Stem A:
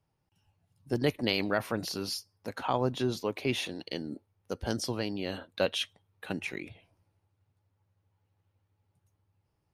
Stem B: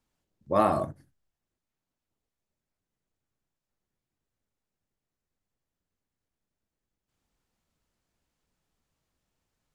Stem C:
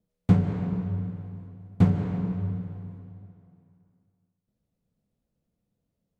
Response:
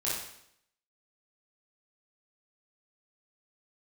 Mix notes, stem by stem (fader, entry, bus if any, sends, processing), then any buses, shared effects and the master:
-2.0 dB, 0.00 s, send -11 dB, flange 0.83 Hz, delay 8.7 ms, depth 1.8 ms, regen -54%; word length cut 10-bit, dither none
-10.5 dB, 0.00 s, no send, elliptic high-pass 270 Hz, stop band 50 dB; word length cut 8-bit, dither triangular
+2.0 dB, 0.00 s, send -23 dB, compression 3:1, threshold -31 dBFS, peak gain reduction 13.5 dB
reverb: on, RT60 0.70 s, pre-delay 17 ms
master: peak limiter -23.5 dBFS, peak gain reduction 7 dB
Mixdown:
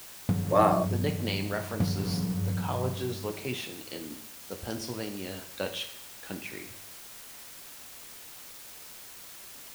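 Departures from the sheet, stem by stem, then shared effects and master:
stem B -10.5 dB -> +1.5 dB; master: missing peak limiter -23.5 dBFS, peak gain reduction 7 dB

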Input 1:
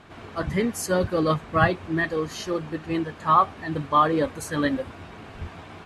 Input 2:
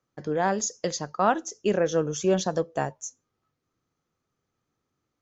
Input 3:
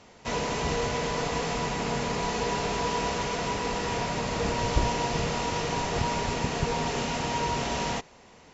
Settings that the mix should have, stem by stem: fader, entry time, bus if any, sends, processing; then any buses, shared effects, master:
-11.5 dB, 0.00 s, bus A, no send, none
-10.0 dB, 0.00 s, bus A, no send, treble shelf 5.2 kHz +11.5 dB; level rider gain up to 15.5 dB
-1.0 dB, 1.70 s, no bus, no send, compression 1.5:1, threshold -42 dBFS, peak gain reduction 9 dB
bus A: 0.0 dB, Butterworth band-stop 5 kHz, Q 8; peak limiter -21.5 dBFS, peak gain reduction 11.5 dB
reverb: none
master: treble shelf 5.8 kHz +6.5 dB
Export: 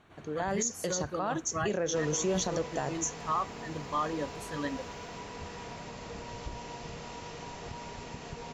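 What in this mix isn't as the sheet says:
stem 3 -1.0 dB -> -8.0 dB; master: missing treble shelf 5.8 kHz +6.5 dB

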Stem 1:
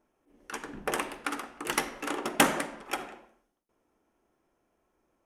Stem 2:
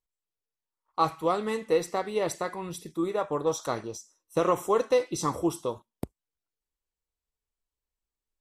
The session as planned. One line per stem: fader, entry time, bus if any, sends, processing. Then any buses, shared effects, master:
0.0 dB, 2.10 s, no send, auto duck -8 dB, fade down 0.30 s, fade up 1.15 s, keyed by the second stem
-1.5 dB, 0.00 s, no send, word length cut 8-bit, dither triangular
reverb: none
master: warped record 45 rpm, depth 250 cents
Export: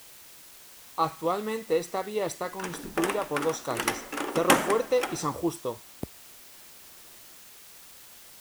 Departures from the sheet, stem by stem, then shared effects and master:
stem 1 0.0 dB -> +9.0 dB; master: missing warped record 45 rpm, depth 250 cents

